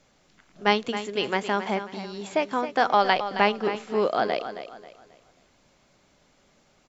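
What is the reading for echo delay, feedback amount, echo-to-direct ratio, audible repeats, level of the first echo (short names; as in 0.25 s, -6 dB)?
0.269 s, 34%, -10.5 dB, 3, -11.0 dB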